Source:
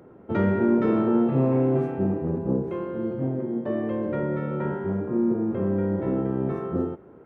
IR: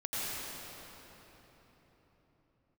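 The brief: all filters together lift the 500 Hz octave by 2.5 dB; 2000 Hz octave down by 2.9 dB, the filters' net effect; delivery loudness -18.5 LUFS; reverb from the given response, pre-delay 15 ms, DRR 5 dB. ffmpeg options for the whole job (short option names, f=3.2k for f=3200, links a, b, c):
-filter_complex "[0:a]equalizer=f=500:t=o:g=3.5,equalizer=f=2k:t=o:g=-4,asplit=2[a][b];[1:a]atrim=start_sample=2205,adelay=15[c];[b][c]afir=irnorm=-1:irlink=0,volume=-11dB[d];[a][d]amix=inputs=2:normalize=0,volume=4dB"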